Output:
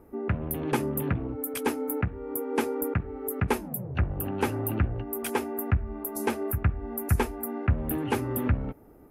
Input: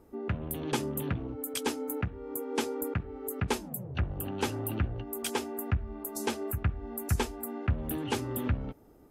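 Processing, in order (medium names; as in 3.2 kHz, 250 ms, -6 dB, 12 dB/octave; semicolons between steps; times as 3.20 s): high-order bell 5 kHz -10 dB; trim +4.5 dB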